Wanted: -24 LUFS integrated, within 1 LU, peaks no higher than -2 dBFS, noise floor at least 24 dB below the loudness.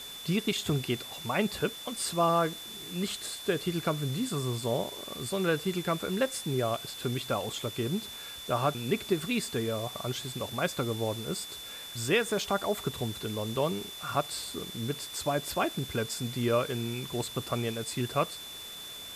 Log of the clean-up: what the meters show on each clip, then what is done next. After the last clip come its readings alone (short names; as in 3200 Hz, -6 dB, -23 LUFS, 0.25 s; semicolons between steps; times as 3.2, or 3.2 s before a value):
steady tone 3500 Hz; tone level -42 dBFS; noise floor -43 dBFS; noise floor target -56 dBFS; loudness -31.5 LUFS; peak -14.0 dBFS; loudness target -24.0 LUFS
-> notch 3500 Hz, Q 30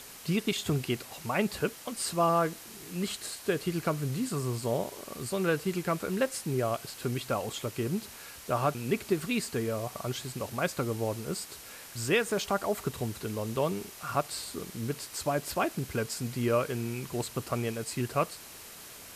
steady tone none; noise floor -48 dBFS; noise floor target -56 dBFS
-> denoiser 8 dB, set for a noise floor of -48 dBFS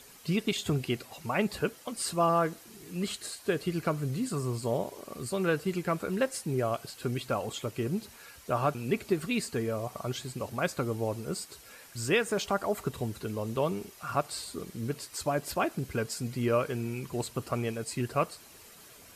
noise floor -53 dBFS; noise floor target -56 dBFS
-> denoiser 6 dB, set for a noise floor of -53 dBFS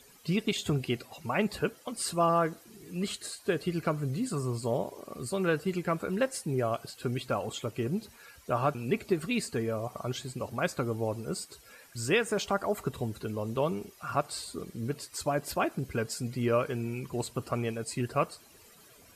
noise floor -57 dBFS; loudness -32.0 LUFS; peak -14.0 dBFS; loudness target -24.0 LUFS
-> gain +8 dB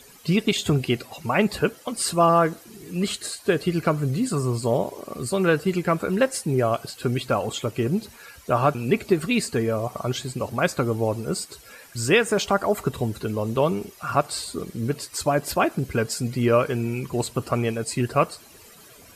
loudness -24.0 LUFS; peak -6.0 dBFS; noise floor -49 dBFS